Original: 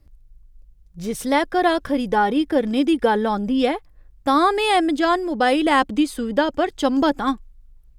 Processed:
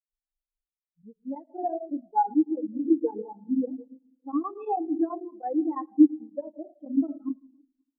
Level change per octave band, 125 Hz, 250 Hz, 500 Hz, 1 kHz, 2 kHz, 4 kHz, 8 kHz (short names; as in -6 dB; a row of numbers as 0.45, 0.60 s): n/a, -5.0 dB, -12.5 dB, -11.5 dB, under -35 dB, under -40 dB, under -40 dB